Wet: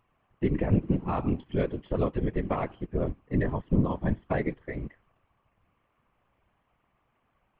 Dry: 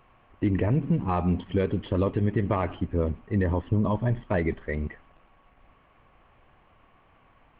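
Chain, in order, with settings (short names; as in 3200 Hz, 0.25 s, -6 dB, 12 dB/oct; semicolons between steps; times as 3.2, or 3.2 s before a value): whisperiser; upward expander 1.5:1, over -43 dBFS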